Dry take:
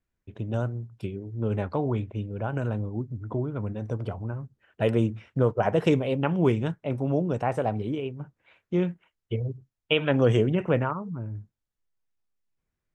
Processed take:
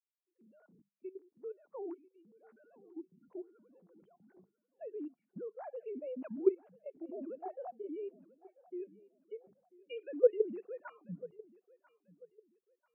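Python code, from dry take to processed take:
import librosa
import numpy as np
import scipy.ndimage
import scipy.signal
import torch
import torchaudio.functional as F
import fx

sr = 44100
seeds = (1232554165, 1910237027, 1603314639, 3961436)

y = fx.sine_speech(x, sr)
y = fx.hum_notches(y, sr, base_hz=50, count=4)
y = fx.level_steps(y, sr, step_db=15)
y = fx.echo_feedback(y, sr, ms=991, feedback_pct=45, wet_db=-14)
y = fx.spectral_expand(y, sr, expansion=1.5)
y = F.gain(torch.from_numpy(y), -5.0).numpy()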